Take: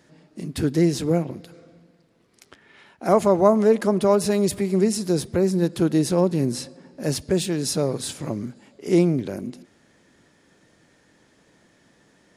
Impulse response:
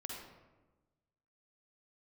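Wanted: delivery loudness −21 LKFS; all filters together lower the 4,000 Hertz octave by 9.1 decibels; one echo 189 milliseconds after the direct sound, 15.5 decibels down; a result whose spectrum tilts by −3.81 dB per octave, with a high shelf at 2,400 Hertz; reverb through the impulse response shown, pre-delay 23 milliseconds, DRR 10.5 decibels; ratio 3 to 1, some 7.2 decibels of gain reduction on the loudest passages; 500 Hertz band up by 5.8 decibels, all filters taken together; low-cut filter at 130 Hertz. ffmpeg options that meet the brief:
-filter_complex "[0:a]highpass=130,equalizer=frequency=500:width_type=o:gain=8,highshelf=frequency=2400:gain=-4,equalizer=frequency=4000:width_type=o:gain=-8,acompressor=threshold=-16dB:ratio=3,aecho=1:1:189:0.168,asplit=2[link_01][link_02];[1:a]atrim=start_sample=2205,adelay=23[link_03];[link_02][link_03]afir=irnorm=-1:irlink=0,volume=-9dB[link_04];[link_01][link_04]amix=inputs=2:normalize=0,volume=0.5dB"

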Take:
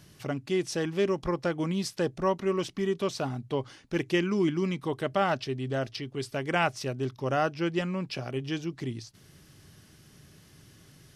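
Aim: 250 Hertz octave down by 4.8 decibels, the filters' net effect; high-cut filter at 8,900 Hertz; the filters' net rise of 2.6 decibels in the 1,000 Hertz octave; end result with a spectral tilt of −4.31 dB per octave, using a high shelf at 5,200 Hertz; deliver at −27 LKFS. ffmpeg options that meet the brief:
ffmpeg -i in.wav -af "lowpass=8900,equalizer=frequency=250:width_type=o:gain=-8.5,equalizer=frequency=1000:width_type=o:gain=4.5,highshelf=frequency=5200:gain=-8,volume=4.5dB" out.wav

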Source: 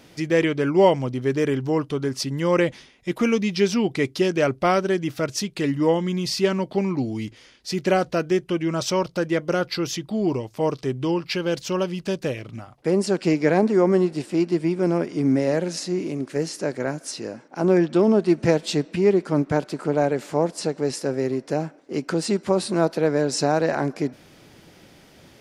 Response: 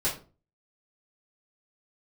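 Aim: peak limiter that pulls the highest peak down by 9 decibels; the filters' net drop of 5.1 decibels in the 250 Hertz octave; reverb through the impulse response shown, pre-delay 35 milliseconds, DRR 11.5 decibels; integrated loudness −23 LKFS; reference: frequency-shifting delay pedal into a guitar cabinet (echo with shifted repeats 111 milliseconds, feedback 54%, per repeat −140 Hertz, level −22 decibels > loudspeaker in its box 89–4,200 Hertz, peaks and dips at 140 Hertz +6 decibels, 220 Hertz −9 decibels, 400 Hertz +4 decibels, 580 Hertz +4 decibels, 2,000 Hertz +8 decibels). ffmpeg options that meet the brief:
-filter_complex "[0:a]equalizer=frequency=250:width_type=o:gain=-8.5,alimiter=limit=-15dB:level=0:latency=1,asplit=2[link_01][link_02];[1:a]atrim=start_sample=2205,adelay=35[link_03];[link_02][link_03]afir=irnorm=-1:irlink=0,volume=-20dB[link_04];[link_01][link_04]amix=inputs=2:normalize=0,asplit=5[link_05][link_06][link_07][link_08][link_09];[link_06]adelay=111,afreqshift=-140,volume=-22dB[link_10];[link_07]adelay=222,afreqshift=-280,volume=-27.4dB[link_11];[link_08]adelay=333,afreqshift=-420,volume=-32.7dB[link_12];[link_09]adelay=444,afreqshift=-560,volume=-38.1dB[link_13];[link_05][link_10][link_11][link_12][link_13]amix=inputs=5:normalize=0,highpass=89,equalizer=frequency=140:width_type=q:width=4:gain=6,equalizer=frequency=220:width_type=q:width=4:gain=-9,equalizer=frequency=400:width_type=q:width=4:gain=4,equalizer=frequency=580:width_type=q:width=4:gain=4,equalizer=frequency=2000:width_type=q:width=4:gain=8,lowpass=frequency=4200:width=0.5412,lowpass=frequency=4200:width=1.3066,volume=2dB"

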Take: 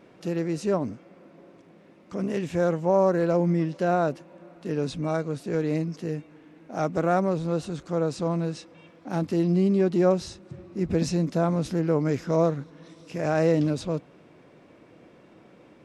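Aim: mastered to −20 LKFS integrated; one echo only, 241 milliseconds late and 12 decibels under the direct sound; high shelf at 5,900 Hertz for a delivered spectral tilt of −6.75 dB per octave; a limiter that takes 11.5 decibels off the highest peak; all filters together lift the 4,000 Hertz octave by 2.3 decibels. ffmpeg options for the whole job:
ffmpeg -i in.wav -af "equalizer=frequency=4000:width_type=o:gain=4.5,highshelf=frequency=5900:gain=-4,alimiter=limit=-21.5dB:level=0:latency=1,aecho=1:1:241:0.251,volume=11.5dB" out.wav

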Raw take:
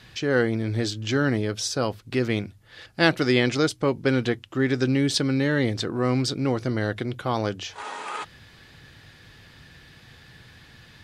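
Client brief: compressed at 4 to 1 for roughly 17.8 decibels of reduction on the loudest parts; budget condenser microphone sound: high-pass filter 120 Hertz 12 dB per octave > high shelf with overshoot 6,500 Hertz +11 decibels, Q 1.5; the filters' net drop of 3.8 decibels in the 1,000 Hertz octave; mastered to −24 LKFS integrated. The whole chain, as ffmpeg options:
ffmpeg -i in.wav -af "equalizer=frequency=1000:width_type=o:gain=-5,acompressor=threshold=-39dB:ratio=4,highpass=120,highshelf=frequency=6500:width_type=q:width=1.5:gain=11,volume=17dB" out.wav

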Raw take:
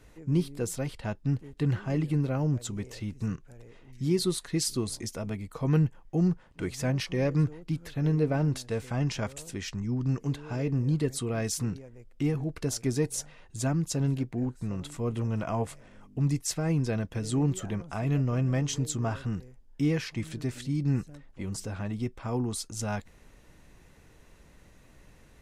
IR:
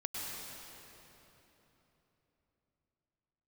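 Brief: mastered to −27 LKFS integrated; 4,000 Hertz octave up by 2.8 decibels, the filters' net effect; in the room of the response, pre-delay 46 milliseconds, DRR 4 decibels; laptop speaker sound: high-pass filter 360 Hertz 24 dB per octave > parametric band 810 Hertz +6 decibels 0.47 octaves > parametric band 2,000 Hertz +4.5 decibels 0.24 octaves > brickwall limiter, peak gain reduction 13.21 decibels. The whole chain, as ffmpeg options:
-filter_complex "[0:a]equalizer=frequency=4000:width_type=o:gain=3.5,asplit=2[link_01][link_02];[1:a]atrim=start_sample=2205,adelay=46[link_03];[link_02][link_03]afir=irnorm=-1:irlink=0,volume=-6.5dB[link_04];[link_01][link_04]amix=inputs=2:normalize=0,highpass=frequency=360:width=0.5412,highpass=frequency=360:width=1.3066,equalizer=frequency=810:width_type=o:width=0.47:gain=6,equalizer=frequency=2000:width_type=o:width=0.24:gain=4.5,volume=12dB,alimiter=limit=-17.5dB:level=0:latency=1"

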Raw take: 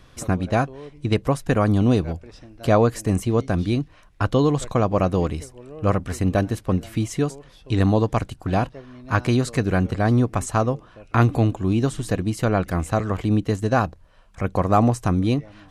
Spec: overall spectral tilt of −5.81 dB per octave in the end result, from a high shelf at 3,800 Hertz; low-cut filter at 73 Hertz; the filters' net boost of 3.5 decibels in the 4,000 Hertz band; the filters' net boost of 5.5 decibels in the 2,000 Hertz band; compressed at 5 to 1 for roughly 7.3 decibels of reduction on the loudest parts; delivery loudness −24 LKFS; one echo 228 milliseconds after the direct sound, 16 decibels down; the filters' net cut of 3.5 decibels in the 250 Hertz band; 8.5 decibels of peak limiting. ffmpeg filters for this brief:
ffmpeg -i in.wav -af "highpass=73,equalizer=frequency=250:width_type=o:gain=-4.5,equalizer=frequency=2000:width_type=o:gain=8,highshelf=frequency=3800:gain=-5,equalizer=frequency=4000:width_type=o:gain=4.5,acompressor=threshold=-20dB:ratio=5,alimiter=limit=-15dB:level=0:latency=1,aecho=1:1:228:0.158,volume=4dB" out.wav

